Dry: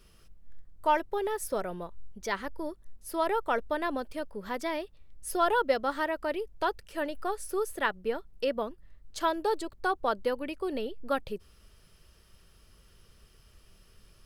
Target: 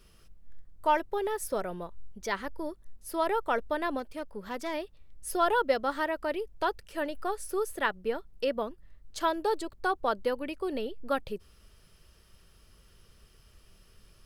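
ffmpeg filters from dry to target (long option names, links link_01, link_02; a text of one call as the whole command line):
ffmpeg -i in.wav -filter_complex "[0:a]asettb=1/sr,asplit=3[link_01][link_02][link_03];[link_01]atrim=end=3.994[link_04];[link_02]atrim=start=3.99:end=4.74,asetpts=PTS-STARTPTS,afade=type=in:duration=0.004:curve=qsin,afade=type=out:start_time=0.746:duration=0.004:curve=qsin,aeval=exprs='(tanh(20*val(0)+0.45)-tanh(0.45))/20':channel_layout=same[link_05];[link_03]atrim=start=4.736[link_06];[link_04][link_05]acrossfade=duration=0.004:curve1=hsin:curve2=qsin[link_07];[link_07][link_06]acrossfade=duration=0.004:curve1=qsin:curve2=hsin" out.wav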